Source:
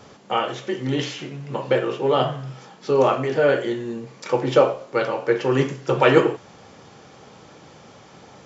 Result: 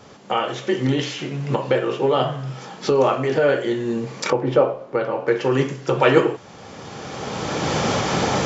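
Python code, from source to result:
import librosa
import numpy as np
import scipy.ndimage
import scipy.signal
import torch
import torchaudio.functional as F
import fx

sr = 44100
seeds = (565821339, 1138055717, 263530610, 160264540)

y = fx.recorder_agc(x, sr, target_db=-11.0, rise_db_per_s=17.0, max_gain_db=30)
y = fx.lowpass(y, sr, hz=1200.0, slope=6, at=(4.3, 5.28))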